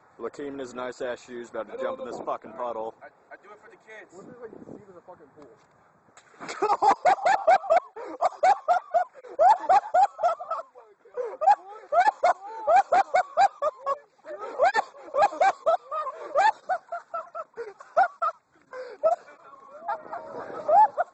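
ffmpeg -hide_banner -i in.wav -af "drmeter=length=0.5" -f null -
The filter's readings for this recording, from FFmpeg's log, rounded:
Channel 1: DR: 9.5
Overall DR: 9.5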